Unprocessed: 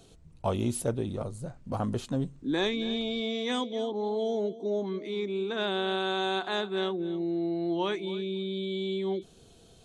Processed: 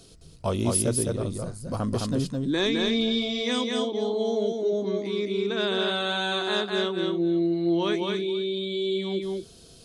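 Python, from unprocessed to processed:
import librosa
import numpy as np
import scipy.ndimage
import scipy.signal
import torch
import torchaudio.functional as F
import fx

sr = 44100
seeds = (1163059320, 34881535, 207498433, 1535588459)

p1 = fx.graphic_eq_31(x, sr, hz=(800, 5000, 10000), db=(-8, 12, 9))
p2 = p1 + fx.echo_single(p1, sr, ms=212, db=-3.0, dry=0)
y = p2 * 10.0 ** (3.0 / 20.0)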